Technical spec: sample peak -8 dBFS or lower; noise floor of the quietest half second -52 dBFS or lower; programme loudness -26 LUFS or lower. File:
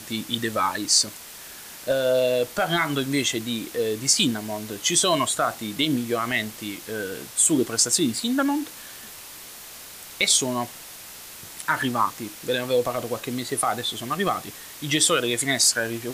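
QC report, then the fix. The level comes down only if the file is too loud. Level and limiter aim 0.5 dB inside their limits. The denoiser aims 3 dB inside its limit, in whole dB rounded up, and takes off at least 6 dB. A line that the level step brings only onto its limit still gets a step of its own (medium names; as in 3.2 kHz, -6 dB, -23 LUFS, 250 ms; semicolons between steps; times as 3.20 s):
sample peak -5.5 dBFS: fail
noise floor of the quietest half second -42 dBFS: fail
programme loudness -23.0 LUFS: fail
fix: noise reduction 10 dB, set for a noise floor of -42 dBFS; trim -3.5 dB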